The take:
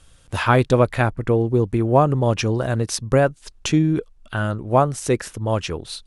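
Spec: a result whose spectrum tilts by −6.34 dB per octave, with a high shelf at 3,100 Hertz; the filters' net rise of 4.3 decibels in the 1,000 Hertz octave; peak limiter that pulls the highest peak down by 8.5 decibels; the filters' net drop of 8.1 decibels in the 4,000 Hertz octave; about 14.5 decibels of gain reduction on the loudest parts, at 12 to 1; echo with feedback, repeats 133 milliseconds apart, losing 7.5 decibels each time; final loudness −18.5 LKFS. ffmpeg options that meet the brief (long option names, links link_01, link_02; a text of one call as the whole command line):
ffmpeg -i in.wav -af "equalizer=frequency=1000:width_type=o:gain=6.5,highshelf=frequency=3100:gain=-4,equalizer=frequency=4000:width_type=o:gain=-8.5,acompressor=threshold=-22dB:ratio=12,alimiter=limit=-19.5dB:level=0:latency=1,aecho=1:1:133|266|399|532|665:0.422|0.177|0.0744|0.0312|0.0131,volume=11dB" out.wav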